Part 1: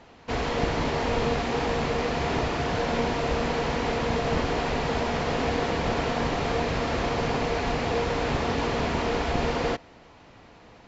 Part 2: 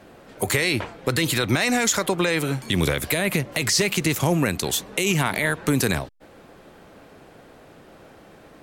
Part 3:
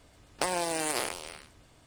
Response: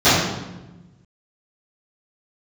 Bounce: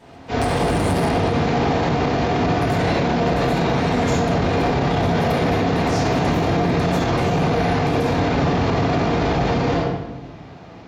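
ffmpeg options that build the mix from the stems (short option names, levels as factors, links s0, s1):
-filter_complex "[0:a]acontrast=79,volume=0.251,asplit=2[s0][s1];[s1]volume=0.188[s2];[1:a]adelay=2200,volume=0.106,asplit=2[s3][s4];[s4]volume=0.211[s5];[2:a]volume=0.891[s6];[3:a]atrim=start_sample=2205[s7];[s2][s5]amix=inputs=2:normalize=0[s8];[s8][s7]afir=irnorm=-1:irlink=0[s9];[s0][s3][s6][s9]amix=inputs=4:normalize=0,alimiter=limit=0.282:level=0:latency=1:release=22"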